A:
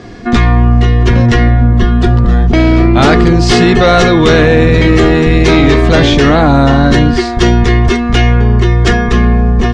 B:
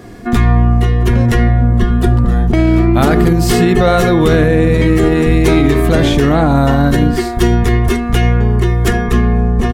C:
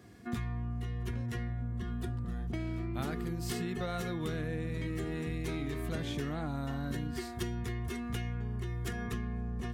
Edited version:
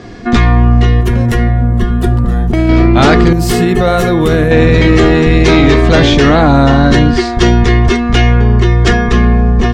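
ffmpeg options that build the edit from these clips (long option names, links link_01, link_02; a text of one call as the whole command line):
ffmpeg -i take0.wav -i take1.wav -filter_complex "[1:a]asplit=2[link_01][link_02];[0:a]asplit=3[link_03][link_04][link_05];[link_03]atrim=end=1.012[link_06];[link_01]atrim=start=1.008:end=2.692[link_07];[link_04]atrim=start=2.688:end=3.332[link_08];[link_02]atrim=start=3.328:end=4.512[link_09];[link_05]atrim=start=4.508[link_10];[link_06][link_07]acrossfade=duration=0.004:curve1=hsin:curve2=hsin[link_11];[link_11][link_08]acrossfade=duration=0.004:curve1=hsin:curve2=hsin[link_12];[link_12][link_09]acrossfade=duration=0.004:curve1=hsin:curve2=hsin[link_13];[link_13][link_10]acrossfade=duration=0.004:curve1=hsin:curve2=hsin" out.wav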